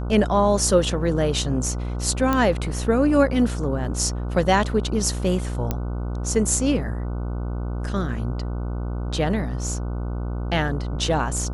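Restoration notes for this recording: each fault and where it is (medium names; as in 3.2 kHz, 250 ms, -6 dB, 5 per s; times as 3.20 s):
buzz 60 Hz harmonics 25 -27 dBFS
2.33 s: pop -9 dBFS
5.71 s: pop -10 dBFS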